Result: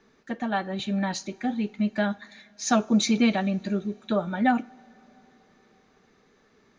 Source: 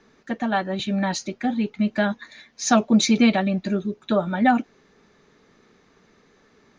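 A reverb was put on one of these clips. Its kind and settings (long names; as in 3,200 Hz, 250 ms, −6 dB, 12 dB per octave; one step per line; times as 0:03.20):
coupled-rooms reverb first 0.35 s, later 4.3 s, from −22 dB, DRR 15 dB
level −4.5 dB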